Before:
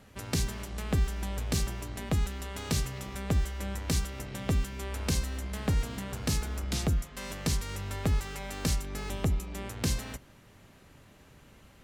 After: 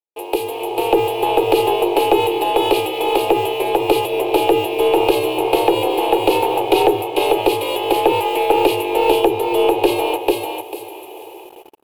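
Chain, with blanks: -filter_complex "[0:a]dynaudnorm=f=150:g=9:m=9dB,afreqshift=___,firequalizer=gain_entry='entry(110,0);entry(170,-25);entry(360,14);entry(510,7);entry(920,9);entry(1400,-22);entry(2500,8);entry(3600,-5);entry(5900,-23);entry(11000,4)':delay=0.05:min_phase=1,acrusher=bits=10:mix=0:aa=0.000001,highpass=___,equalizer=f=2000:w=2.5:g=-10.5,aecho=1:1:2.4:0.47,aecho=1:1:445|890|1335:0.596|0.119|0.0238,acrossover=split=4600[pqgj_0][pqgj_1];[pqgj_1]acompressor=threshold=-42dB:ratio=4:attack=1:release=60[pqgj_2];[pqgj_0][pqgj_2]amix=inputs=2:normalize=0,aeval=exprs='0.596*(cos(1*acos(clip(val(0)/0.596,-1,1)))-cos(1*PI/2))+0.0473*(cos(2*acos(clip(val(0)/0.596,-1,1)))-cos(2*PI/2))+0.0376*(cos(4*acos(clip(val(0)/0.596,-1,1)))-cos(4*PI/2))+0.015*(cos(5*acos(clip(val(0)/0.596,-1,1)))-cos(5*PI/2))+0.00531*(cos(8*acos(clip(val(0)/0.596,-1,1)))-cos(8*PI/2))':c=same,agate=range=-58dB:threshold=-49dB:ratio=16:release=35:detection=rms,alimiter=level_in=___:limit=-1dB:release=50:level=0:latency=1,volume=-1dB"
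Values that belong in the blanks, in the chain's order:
58, 510, 10.5dB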